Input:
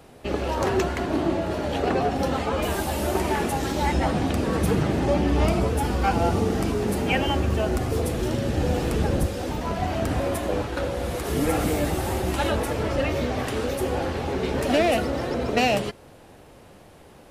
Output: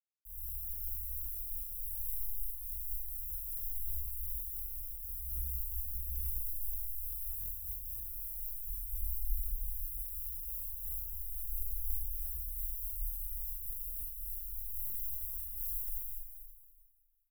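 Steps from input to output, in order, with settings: median filter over 25 samples; bit-crush 5-bit; inverse Chebyshev band-stop 120–4900 Hz, stop band 60 dB; 7.58–8.65 resonant low shelf 650 Hz -8 dB, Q 3; echo 0.289 s -6 dB; Schroeder reverb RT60 1.7 s, combs from 31 ms, DRR -8.5 dB; stuck buffer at 7.39/14.85, samples 1024, times 3; noise-modulated level, depth 60%; gain -1.5 dB

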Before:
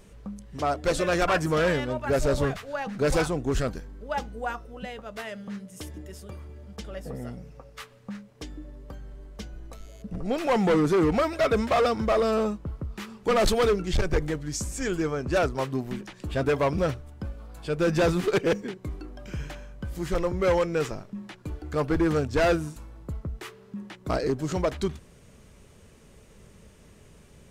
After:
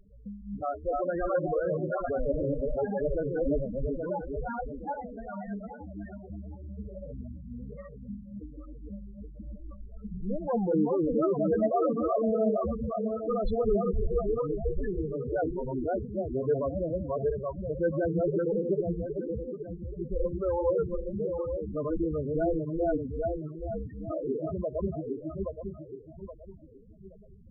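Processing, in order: regenerating reverse delay 0.412 s, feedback 58%, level -0.5 dB; flange 0.83 Hz, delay 3.1 ms, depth 2.3 ms, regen +71%; on a send at -21 dB: reverb, pre-delay 3 ms; on the sum: soft clip -14.5 dBFS, distortion -26 dB; loudest bins only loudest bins 8

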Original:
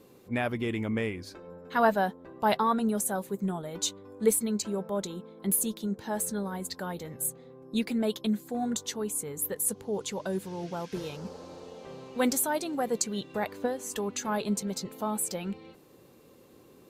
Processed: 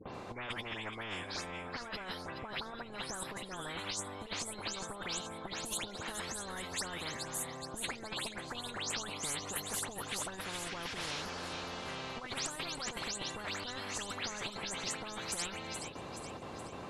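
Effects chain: spectral delay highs late, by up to 0.141 s; Bessel low-pass 7200 Hz, order 8; gate with hold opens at -47 dBFS; HPF 130 Hz 12 dB/oct; negative-ratio compressor -37 dBFS, ratio -1; tilt -4.5 dB/oct; thin delay 0.423 s, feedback 52%, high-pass 3200 Hz, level -10 dB; spectral compressor 10:1; gain -7.5 dB

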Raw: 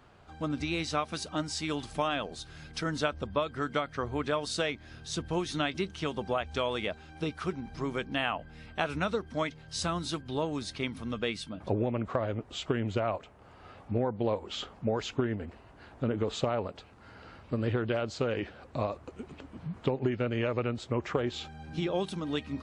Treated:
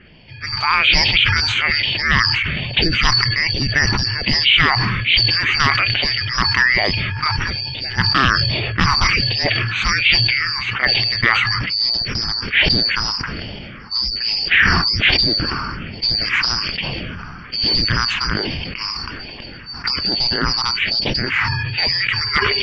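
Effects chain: four-band scrambler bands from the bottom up 2341; low-pass opened by the level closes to 2000 Hz, open at -25 dBFS; phaser stages 4, 1.2 Hz, lowest notch 540–1300 Hz; hard clip -30.5 dBFS, distortion -14 dB; ladder low-pass 3500 Hz, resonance 60%; maximiser +35.5 dB; sustainer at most 22 dB/s; gain -2.5 dB

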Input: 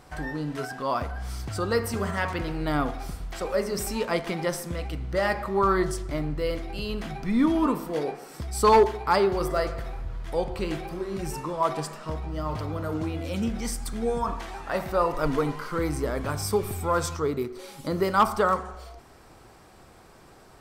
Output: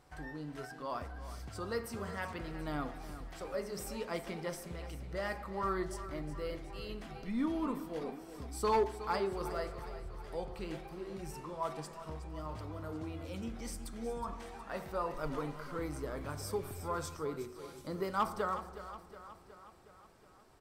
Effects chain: flange 0.15 Hz, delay 2.2 ms, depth 5 ms, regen -79%; on a send: feedback echo 0.366 s, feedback 59%, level -13 dB; on the sum: gain -8 dB

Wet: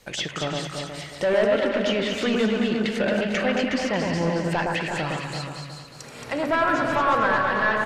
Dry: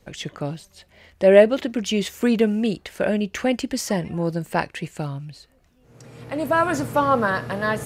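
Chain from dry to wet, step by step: reverse delay 0.112 s, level -11 dB; tilt shelf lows -6 dB, about 690 Hz; de-hum 70.6 Hz, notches 2; in parallel at -2 dB: compressor, threshold -26 dBFS, peak gain reduction 17 dB; on the sum: soft clip -17 dBFS, distortion -8 dB; echo 0.365 s -8 dB; treble ducked by the level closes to 2800 Hz, closed at -20 dBFS; on a send: echo with dull and thin repeats by turns 0.112 s, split 1700 Hz, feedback 69%, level -2 dB; on the sum: gain -1.5 dB

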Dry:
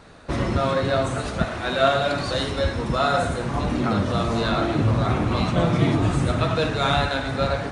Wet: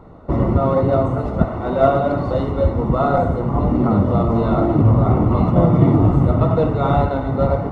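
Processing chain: in parallel at -9.5 dB: decimation with a swept rate 42×, swing 60% 2.1 Hz; on the sum: polynomial smoothing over 65 samples; gain +5 dB

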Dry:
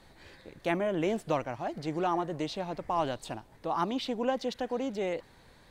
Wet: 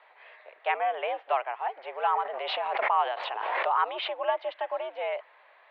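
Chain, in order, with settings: mistuned SSB +96 Hz 500–2900 Hz; 2.04–4.19 backwards sustainer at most 25 dB/s; gain +4.5 dB

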